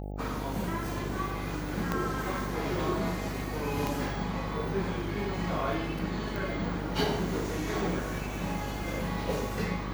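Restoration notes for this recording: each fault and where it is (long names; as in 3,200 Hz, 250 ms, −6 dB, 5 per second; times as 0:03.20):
mains buzz 50 Hz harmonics 17 −37 dBFS
0:01.92: click −15 dBFS
0:03.87: click
0:06.36: click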